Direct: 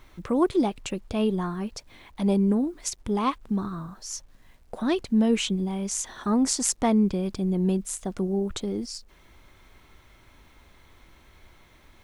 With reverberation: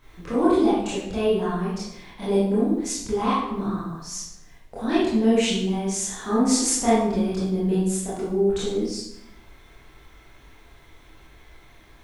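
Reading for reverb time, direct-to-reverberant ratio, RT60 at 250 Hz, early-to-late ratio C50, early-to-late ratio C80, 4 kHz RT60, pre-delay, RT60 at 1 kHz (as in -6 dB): 0.90 s, -10.5 dB, 1.0 s, -0.5 dB, 3.5 dB, 0.65 s, 21 ms, 0.85 s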